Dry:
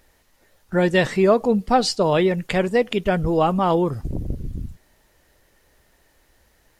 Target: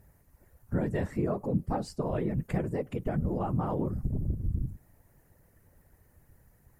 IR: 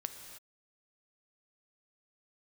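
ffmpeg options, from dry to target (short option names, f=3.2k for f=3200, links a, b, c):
-af "aexciter=amount=8.2:drive=4.7:freq=4.8k,equalizer=f=5k:w=0.7:g=-13,acompressor=threshold=-32dB:ratio=2,afftfilt=real='hypot(re,im)*cos(2*PI*random(0))':imag='hypot(re,im)*sin(2*PI*random(1))':win_size=512:overlap=0.75,bass=f=250:g=9,treble=f=4k:g=-15"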